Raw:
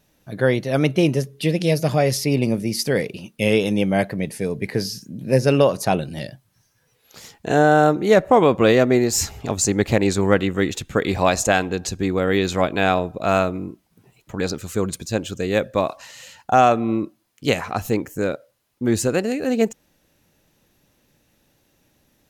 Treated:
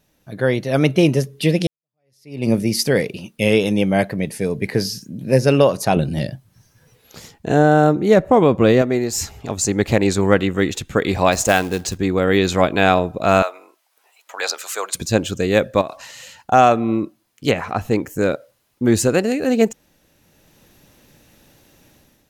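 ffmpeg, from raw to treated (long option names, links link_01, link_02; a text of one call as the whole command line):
ffmpeg -i in.wav -filter_complex "[0:a]asettb=1/sr,asplit=3[link_01][link_02][link_03];[link_01]atrim=end=5.964[link_04];[link_02]atrim=start=5.96:end=8.82,asetpts=PTS-STARTPTS,afade=type=in:duration=0.004:curve=qsin,afade=type=out:start_time=2.856:duration=0.004:curve=qsin,lowshelf=frequency=420:gain=8[link_05];[link_03]atrim=start=8.816[link_06];[link_04][link_05]acrossfade=duration=0.004:curve1=hsin:curve2=qsin[link_07];[link_07][link_06]acrossfade=duration=0.004:curve1=qsin:curve2=hsin,asettb=1/sr,asplit=3[link_08][link_09][link_10];[link_08]atrim=end=11.324[link_11];[link_09]atrim=start=11.32:end=11.98,asetpts=PTS-STARTPTS,afade=type=in:duration=0.004:curve=qsin,afade=type=out:start_time=0.656:duration=0.004:curve=qsin,acrusher=bits=4:mode=log:mix=0:aa=0.000001[link_12];[link_10]atrim=start=11.976[link_13];[link_11][link_12]acrossfade=duration=0.004:curve1=hsin:curve2=qsin[link_14];[link_14][link_13]acrossfade=duration=0.004:curve1=qsin:curve2=hsin,asettb=1/sr,asplit=3[link_15][link_16][link_17];[link_15]atrim=end=13.424[link_18];[link_16]atrim=start=13.42:end=14.95,asetpts=PTS-STARTPTS,afade=type=in:duration=0.004:curve=qsin,afade=type=out:start_time=1.526:duration=0.004:curve=qsin,highpass=frequency=650:width=0.5412,highpass=frequency=650:width=1.3066[link_19];[link_17]atrim=start=14.946[link_20];[link_18][link_19]acrossfade=duration=0.004:curve1=hsin:curve2=qsin[link_21];[link_21][link_20]acrossfade=duration=0.004:curve1=qsin:curve2=hsin,asettb=1/sr,asplit=3[link_22][link_23][link_24];[link_22]atrim=end=15.814[link_25];[link_23]atrim=start=15.81:end=16.52,asetpts=PTS-STARTPTS,afade=type=in:duration=0.004:curve=qsin,afade=type=out:start_time=0.706:duration=0.004:curve=qsin,acompressor=threshold=-28dB:ratio=5:attack=3.2:release=140:knee=1:detection=peak[link_26];[link_24]atrim=start=16.516[link_27];[link_25][link_26]acrossfade=duration=0.004:curve1=hsin:curve2=qsin[link_28];[link_28][link_27]acrossfade=duration=0.004:curve1=qsin:curve2=hsin,asettb=1/sr,asplit=3[link_29][link_30][link_31];[link_29]atrim=end=17.514[link_32];[link_30]atrim=start=17.51:end=17.91,asetpts=PTS-STARTPTS,afade=type=in:duration=0.004:curve=qsin,afade=type=out:start_time=0.396:duration=0.004:curve=qsin,acrossover=split=3000[link_33][link_34];[link_34]acompressor=threshold=-48dB:ratio=4:attack=1:release=60[link_35];[link_33][link_35]amix=inputs=2:normalize=0[link_36];[link_31]atrim=start=17.906[link_37];[link_32][link_36]acrossfade=duration=0.004:curve1=hsin:curve2=qsin[link_38];[link_38][link_37]acrossfade=duration=0.004:curve1=qsin:curve2=hsin,asplit=2[link_39][link_40];[link_39]atrim=end=1.67,asetpts=PTS-STARTPTS,afade=type=out:start_time=1.666:duration=0.004:curve=hsin[link_41];[link_40]atrim=start=1.67,asetpts=PTS-STARTPTS,afade=type=in:duration=0.82:curve=exp[link_42];[link_41][link_42]concat=n=2:v=0:a=1,dynaudnorm=framelen=430:gausssize=3:maxgain=11.5dB,volume=-1dB" out.wav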